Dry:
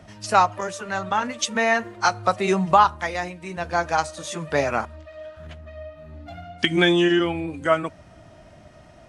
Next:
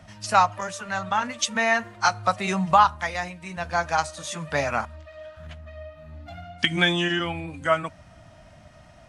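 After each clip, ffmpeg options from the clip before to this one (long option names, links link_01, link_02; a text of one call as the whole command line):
ffmpeg -i in.wav -af "equalizer=frequency=380:width_type=o:width=0.87:gain=-11" out.wav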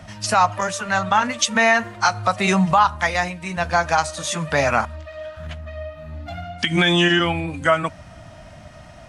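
ffmpeg -i in.wav -af "alimiter=limit=-14dB:level=0:latency=1:release=108,volume=8dB" out.wav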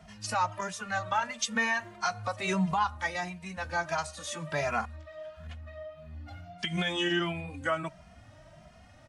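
ffmpeg -i in.wav -filter_complex "[0:a]asplit=2[link_01][link_02];[link_02]adelay=2.5,afreqshift=1.5[link_03];[link_01][link_03]amix=inputs=2:normalize=1,volume=-9dB" out.wav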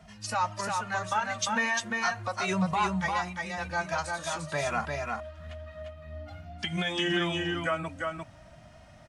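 ffmpeg -i in.wav -af "aecho=1:1:349:0.668" out.wav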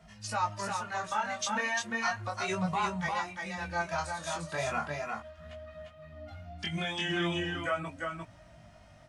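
ffmpeg -i in.wav -af "flanger=delay=17.5:depth=6.8:speed=0.36" out.wav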